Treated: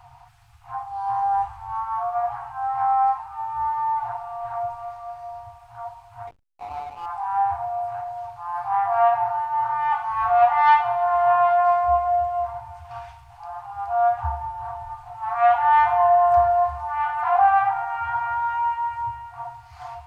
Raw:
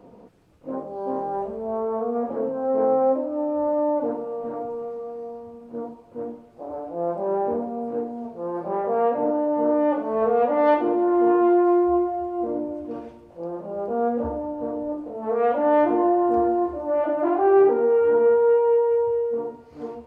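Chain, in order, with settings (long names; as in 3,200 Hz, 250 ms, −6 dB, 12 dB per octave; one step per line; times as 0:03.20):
brick-wall band-stop 130–690 Hz
0:06.27–0:07.06: slack as between gear wheels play −42.5 dBFS
level +8.5 dB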